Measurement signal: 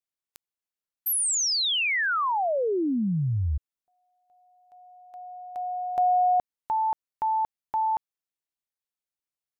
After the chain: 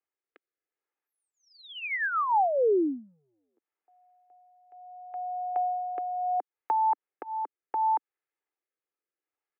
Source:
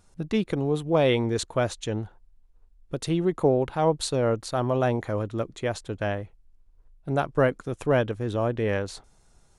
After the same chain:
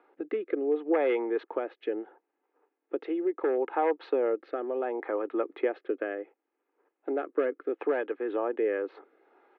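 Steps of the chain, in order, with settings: wavefolder -15 dBFS; compressor 5:1, threshold -32 dBFS; inverse Chebyshev low-pass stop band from 7000 Hz, stop band 60 dB; rotary speaker horn 0.7 Hz; steep high-pass 280 Hz 48 dB/oct; comb 2.4 ms, depth 38%; gain +8.5 dB

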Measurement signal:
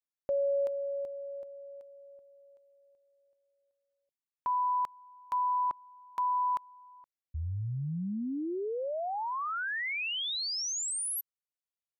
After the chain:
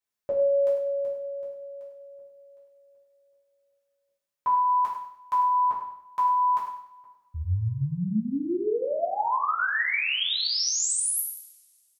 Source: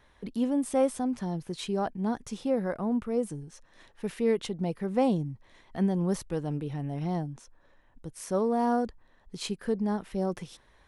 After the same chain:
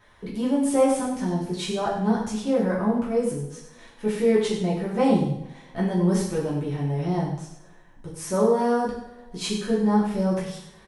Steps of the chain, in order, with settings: on a send: feedback echo 97 ms, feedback 32%, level -11.5 dB; on the sum: two-slope reverb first 0.57 s, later 2.2 s, from -26 dB, DRR -6.5 dB

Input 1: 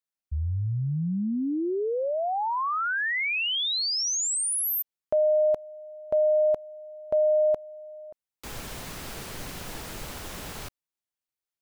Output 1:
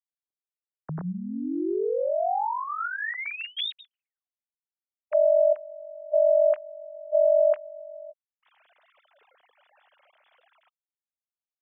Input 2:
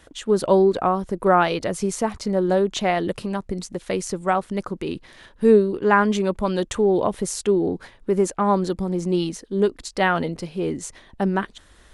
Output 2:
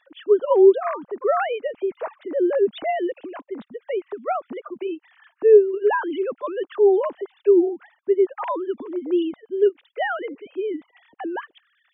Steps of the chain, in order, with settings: sine-wave speech

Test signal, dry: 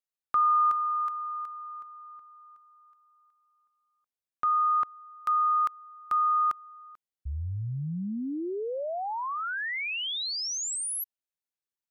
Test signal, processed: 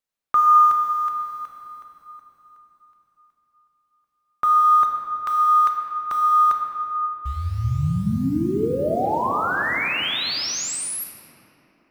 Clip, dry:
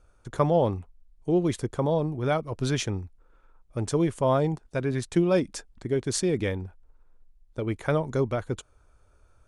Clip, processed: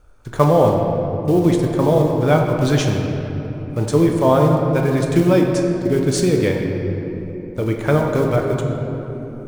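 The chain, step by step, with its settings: block floating point 5-bit; high shelf 4500 Hz -4.5 dB; shoebox room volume 210 m³, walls hard, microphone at 0.42 m; gain +7 dB

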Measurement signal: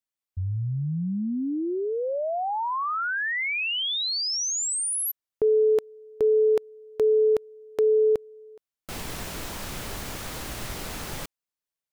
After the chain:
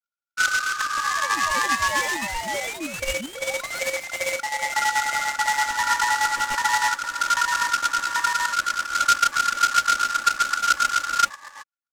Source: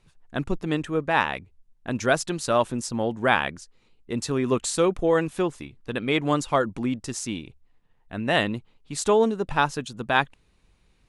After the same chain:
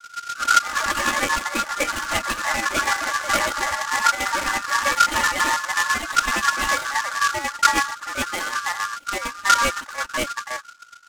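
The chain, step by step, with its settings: tilt -3.5 dB/oct; chopper 7.6 Hz, depth 65%, duty 45%; echoes that change speed 91 ms, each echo +4 st, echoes 3; low-pass opened by the level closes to 1000 Hz, open at -14.5 dBFS; wavefolder -9.5 dBFS; three bands offset in time lows, highs, mids 40/370 ms, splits 170/630 Hz; downsampling 11025 Hz; ring modulator 1400 Hz; comb 3.5 ms, depth 99%; noise-modulated delay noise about 4400 Hz, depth 0.044 ms

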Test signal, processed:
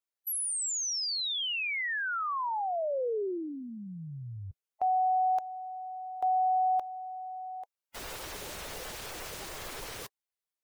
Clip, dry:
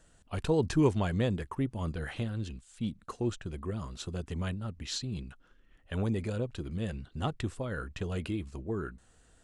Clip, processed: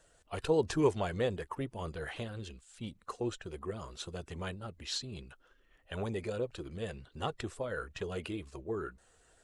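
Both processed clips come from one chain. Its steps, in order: bin magnitudes rounded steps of 15 dB; resonant low shelf 320 Hz -7 dB, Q 1.5

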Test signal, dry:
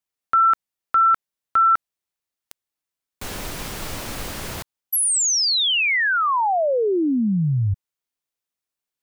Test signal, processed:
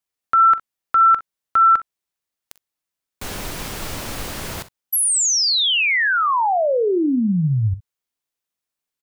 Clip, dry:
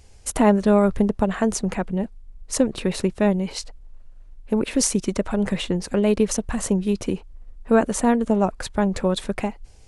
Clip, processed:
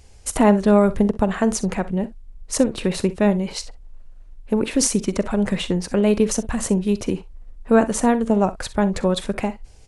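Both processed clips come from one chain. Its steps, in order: early reflections 44 ms -18 dB, 62 ms -17.5 dB; gain +1.5 dB

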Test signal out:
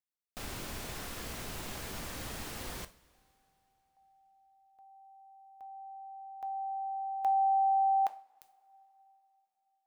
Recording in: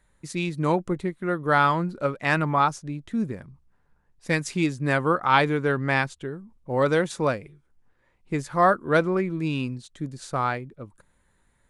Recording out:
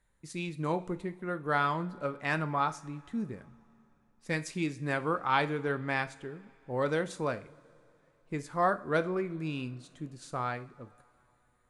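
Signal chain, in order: two-slope reverb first 0.37 s, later 3.3 s, from -21 dB, DRR 10 dB; gain -8.5 dB

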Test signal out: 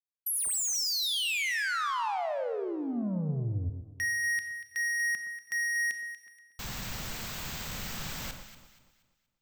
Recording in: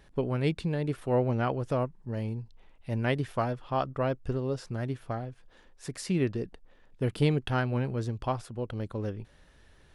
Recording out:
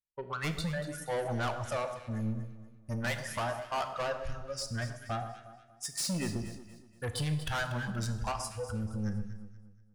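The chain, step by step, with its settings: spectral noise reduction 26 dB; expander -52 dBFS; resonant low shelf 240 Hz +7.5 dB, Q 1.5; compressor, threshold -27 dBFS; tilt shelf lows -5.5 dB, about 750 Hz; soft clip -37.5 dBFS; echo with dull and thin repeats by turns 0.119 s, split 1300 Hz, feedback 59%, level -8 dB; Schroeder reverb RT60 0.87 s, combs from 26 ms, DRR 10 dB; gain +7.5 dB

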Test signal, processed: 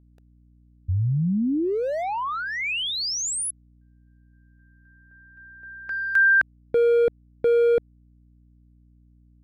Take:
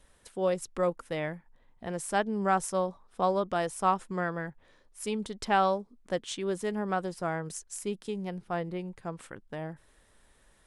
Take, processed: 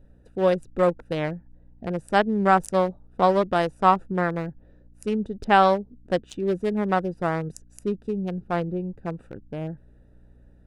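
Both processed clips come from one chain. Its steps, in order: Wiener smoothing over 41 samples; hum 60 Hz, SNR 30 dB; gain +8.5 dB

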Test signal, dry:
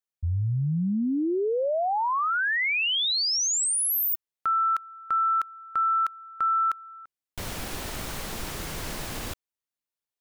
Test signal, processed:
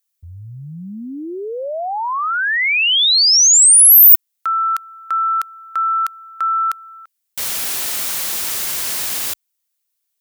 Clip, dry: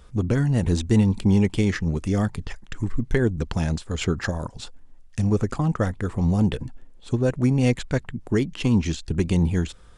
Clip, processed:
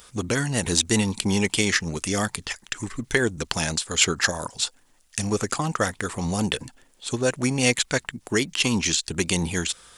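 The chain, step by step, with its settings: tilt +4 dB/oct; gain +4.5 dB

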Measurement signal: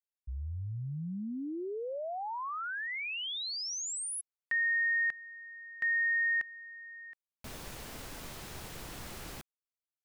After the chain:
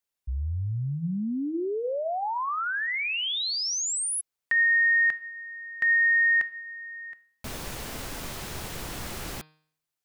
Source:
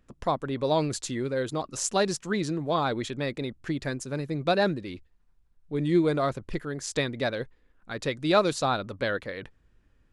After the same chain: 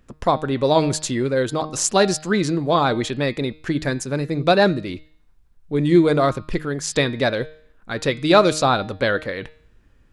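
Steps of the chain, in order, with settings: de-hum 154.8 Hz, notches 33; gain +8.5 dB

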